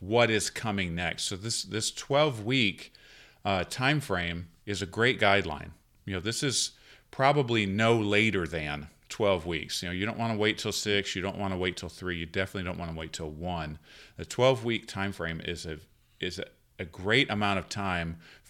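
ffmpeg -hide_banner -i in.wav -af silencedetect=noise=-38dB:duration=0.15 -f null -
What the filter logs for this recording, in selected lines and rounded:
silence_start: 2.95
silence_end: 3.45 | silence_duration: 0.50
silence_start: 4.44
silence_end: 4.67 | silence_duration: 0.23
silence_start: 5.68
silence_end: 6.07 | silence_duration: 0.39
silence_start: 6.68
silence_end: 7.13 | silence_duration: 0.45
silence_start: 8.86
silence_end: 9.10 | silence_duration: 0.24
silence_start: 13.75
silence_end: 14.19 | silence_duration: 0.44
silence_start: 15.78
silence_end: 16.21 | silence_duration: 0.43
silence_start: 16.47
silence_end: 16.79 | silence_duration: 0.33
silence_start: 18.14
silence_end: 18.49 | silence_duration: 0.35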